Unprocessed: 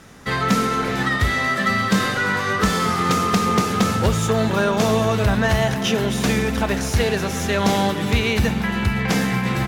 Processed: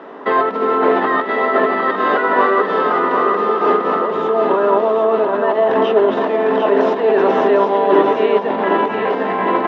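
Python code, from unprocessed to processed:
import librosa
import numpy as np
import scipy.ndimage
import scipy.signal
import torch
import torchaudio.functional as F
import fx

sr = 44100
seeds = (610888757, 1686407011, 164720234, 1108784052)

y = fx.over_compress(x, sr, threshold_db=-24.0, ratio=-1.0)
y = fx.cabinet(y, sr, low_hz=280.0, low_slope=24, high_hz=2600.0, hz=(280.0, 410.0, 640.0, 990.0, 1500.0, 2300.0), db=(4, 9, 8, 9, -3, -10))
y = fx.echo_feedback(y, sr, ms=752, feedback_pct=40, wet_db=-5.5)
y = F.gain(torch.from_numpy(y), 5.5).numpy()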